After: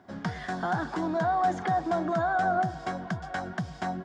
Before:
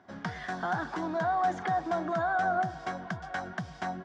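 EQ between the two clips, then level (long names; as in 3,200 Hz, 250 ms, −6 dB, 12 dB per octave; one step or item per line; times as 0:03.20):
tilt shelving filter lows +4 dB, about 840 Hz
high-shelf EQ 4,400 Hz +10 dB
notch filter 5,900 Hz, Q 21
+1.5 dB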